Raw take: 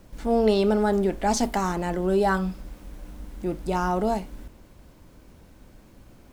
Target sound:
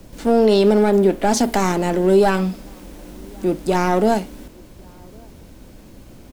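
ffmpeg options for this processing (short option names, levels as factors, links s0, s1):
-filter_complex "[0:a]asettb=1/sr,asplit=3[s0][s1][s2];[s0]atrim=end=0.794[s3];[s1]atrim=start=0.79:end=1.48,asetpts=PTS-STARTPTS,afade=t=in:d=0.004:c=qsin,afade=t=out:st=0.686:d=0.004:c=qsin,equalizer=f=6000:w=0.83:g=-4.5[s4];[s2]atrim=start=1.476[s5];[s3][s4]acrossfade=d=0.004:c1=hsin:c2=qsin[s6];[s6][s5]acrossfade=d=0.004:c1=qsin:c2=hsin,acrossover=split=170|680|2600[s7][s8][s9][s10];[s7]acompressor=threshold=0.00316:ratio=4[s11];[s9]aeval=exprs='max(val(0),0)':c=same[s12];[s11][s8][s12][s10]amix=inputs=4:normalize=0,asplit=2[s13][s14];[s14]adelay=1108,volume=0.0316,highshelf=f=4000:g=-24.9[s15];[s13][s15]amix=inputs=2:normalize=0,alimiter=level_in=5.31:limit=0.891:release=50:level=0:latency=1,volume=0.596"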